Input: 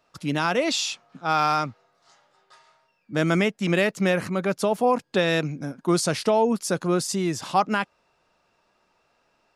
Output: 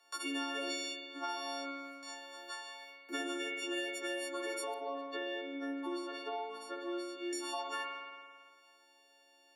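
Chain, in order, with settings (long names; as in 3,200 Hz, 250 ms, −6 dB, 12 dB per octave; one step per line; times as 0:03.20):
every partial snapped to a pitch grid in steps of 4 semitones
noise gate with hold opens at −48 dBFS
Chebyshev high-pass filter 280 Hz, order 8
parametric band 490 Hz −8 dB 0.42 octaves
downward compressor 6 to 1, threshold −34 dBFS, peak gain reduction 19 dB
0:04.74–0:07.33: high-frequency loss of the air 450 metres
spring reverb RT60 1.1 s, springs 54 ms, chirp 80 ms, DRR 1.5 dB
multiband upward and downward compressor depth 70%
level −4.5 dB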